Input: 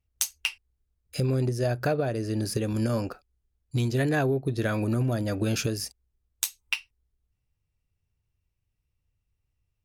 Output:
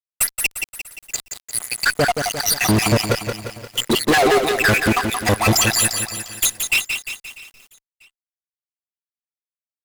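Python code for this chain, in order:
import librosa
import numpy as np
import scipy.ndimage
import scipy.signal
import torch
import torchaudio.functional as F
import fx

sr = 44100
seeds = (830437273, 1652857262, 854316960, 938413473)

y = fx.spec_dropout(x, sr, seeds[0], share_pct=78)
y = fx.highpass(y, sr, hz=fx.line((3.75, 190.0), (4.66, 630.0)), slope=24, at=(3.75, 4.66), fade=0.02)
y = fx.over_compress(y, sr, threshold_db=-32.0, ratio=-1.0)
y = fx.ladder_lowpass(y, sr, hz=7500.0, resonance_pct=85, at=(0.47, 1.46), fade=0.02)
y = y + 10.0 ** (-63.0 / 20.0) * np.sin(2.0 * np.pi * 2000.0 * np.arange(len(y)) / sr)
y = fx.fuzz(y, sr, gain_db=45.0, gate_db=-49.0)
y = fx.echo_feedback(y, sr, ms=643, feedback_pct=29, wet_db=-22.5)
y = fx.echo_crushed(y, sr, ms=175, feedback_pct=55, bits=7, wet_db=-6)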